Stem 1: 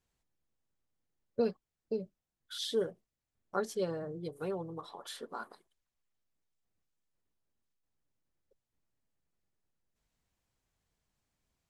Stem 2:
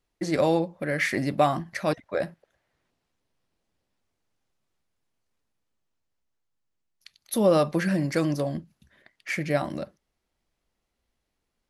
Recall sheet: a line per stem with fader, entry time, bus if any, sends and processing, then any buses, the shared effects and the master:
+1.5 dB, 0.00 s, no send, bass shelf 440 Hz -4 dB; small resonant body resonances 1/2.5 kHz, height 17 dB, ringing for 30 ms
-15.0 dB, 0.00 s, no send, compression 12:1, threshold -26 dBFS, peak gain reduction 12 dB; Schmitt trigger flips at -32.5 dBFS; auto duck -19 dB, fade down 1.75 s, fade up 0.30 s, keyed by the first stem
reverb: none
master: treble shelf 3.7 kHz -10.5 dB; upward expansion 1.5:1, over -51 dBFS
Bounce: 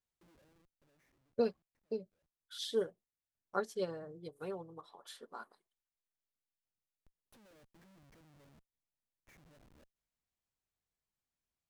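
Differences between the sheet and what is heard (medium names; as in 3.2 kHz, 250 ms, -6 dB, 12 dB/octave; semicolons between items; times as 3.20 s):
stem 1: missing small resonant body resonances 1/2.5 kHz, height 17 dB, ringing for 30 ms; master: missing treble shelf 3.7 kHz -10.5 dB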